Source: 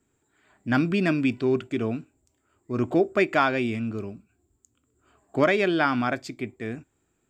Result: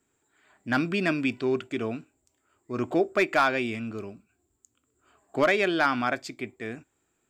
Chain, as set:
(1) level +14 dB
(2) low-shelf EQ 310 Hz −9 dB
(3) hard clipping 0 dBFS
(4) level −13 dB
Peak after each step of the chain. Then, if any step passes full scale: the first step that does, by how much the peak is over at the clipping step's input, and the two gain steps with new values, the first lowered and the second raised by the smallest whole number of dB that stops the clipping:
+6.5, +5.5, 0.0, −13.0 dBFS
step 1, 5.5 dB
step 1 +8 dB, step 4 −7 dB

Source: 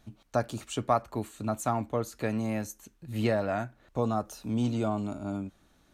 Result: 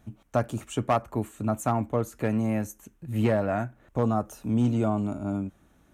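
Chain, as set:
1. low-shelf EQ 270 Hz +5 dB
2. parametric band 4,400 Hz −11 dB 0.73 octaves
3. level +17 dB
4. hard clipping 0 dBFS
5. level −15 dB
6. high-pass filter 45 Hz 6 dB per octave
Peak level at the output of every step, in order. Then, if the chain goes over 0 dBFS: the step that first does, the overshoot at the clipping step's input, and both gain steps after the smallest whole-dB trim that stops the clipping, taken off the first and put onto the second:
−11.5, −11.5, +5.5, 0.0, −15.0, −13.5 dBFS
step 3, 5.5 dB
step 3 +11 dB, step 5 −9 dB

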